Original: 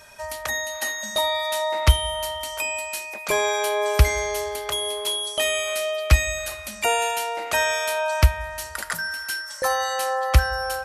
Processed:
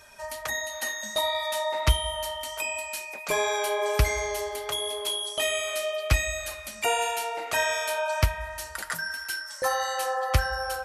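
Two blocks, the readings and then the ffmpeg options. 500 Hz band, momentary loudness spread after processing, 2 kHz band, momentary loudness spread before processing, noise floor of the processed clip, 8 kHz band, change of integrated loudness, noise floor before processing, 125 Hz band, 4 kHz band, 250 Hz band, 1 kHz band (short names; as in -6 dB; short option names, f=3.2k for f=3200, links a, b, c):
-4.0 dB, 7 LU, -4.0 dB, 8 LU, -42 dBFS, -4.0 dB, -4.5 dB, -37 dBFS, -7.0 dB, -4.0 dB, -4.0 dB, -4.0 dB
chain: -af "flanger=delay=2.2:depth=5.9:regen=-39:speed=1.4:shape=triangular"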